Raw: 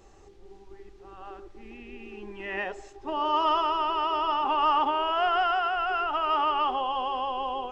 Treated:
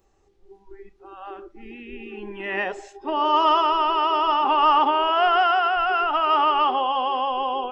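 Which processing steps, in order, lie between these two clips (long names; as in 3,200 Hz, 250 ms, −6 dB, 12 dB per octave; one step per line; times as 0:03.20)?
noise reduction from a noise print of the clip's start 16 dB
level +6 dB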